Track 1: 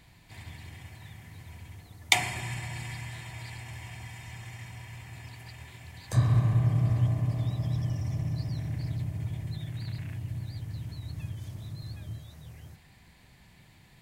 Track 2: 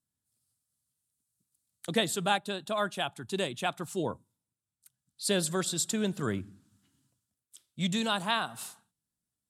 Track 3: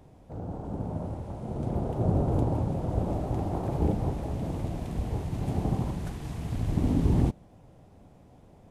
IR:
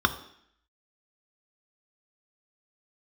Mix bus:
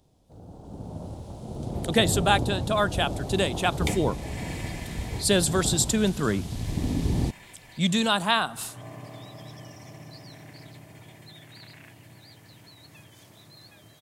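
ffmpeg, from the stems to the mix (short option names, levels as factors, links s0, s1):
-filter_complex "[0:a]highpass=340,adelay=1750,volume=0.447[s0];[1:a]volume=0.794,asplit=2[s1][s2];[2:a]highshelf=f=2800:t=q:w=1.5:g=9.5,volume=0.299[s3];[s2]apad=whole_len=695085[s4];[s0][s4]sidechaincompress=threshold=0.00224:ratio=3:attack=16:release=219[s5];[s5][s1][s3]amix=inputs=3:normalize=0,dynaudnorm=f=180:g=9:m=2.66"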